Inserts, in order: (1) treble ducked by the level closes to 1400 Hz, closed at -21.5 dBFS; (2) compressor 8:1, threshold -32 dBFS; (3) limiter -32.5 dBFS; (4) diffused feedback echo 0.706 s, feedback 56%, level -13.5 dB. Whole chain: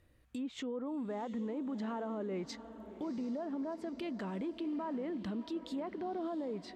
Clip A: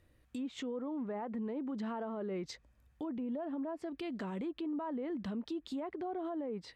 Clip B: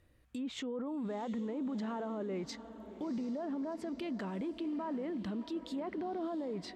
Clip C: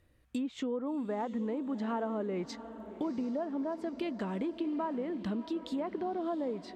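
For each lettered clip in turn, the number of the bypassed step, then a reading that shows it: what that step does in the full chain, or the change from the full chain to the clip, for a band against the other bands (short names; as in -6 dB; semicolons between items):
4, echo-to-direct -12.0 dB to none; 2, 8 kHz band +1.5 dB; 3, mean gain reduction 3.0 dB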